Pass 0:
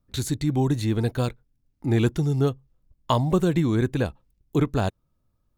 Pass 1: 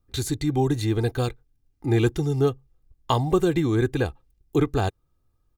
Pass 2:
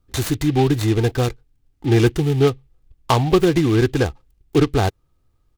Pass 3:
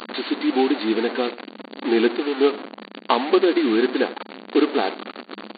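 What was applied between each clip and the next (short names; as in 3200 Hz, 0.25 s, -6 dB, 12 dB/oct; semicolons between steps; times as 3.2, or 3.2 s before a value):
comb 2.5 ms, depth 51%
noise-modulated delay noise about 2600 Hz, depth 0.044 ms; gain +5.5 dB
delta modulation 64 kbps, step -20.5 dBFS; echo 88 ms -18 dB; FFT band-pass 200–4600 Hz; gain -1 dB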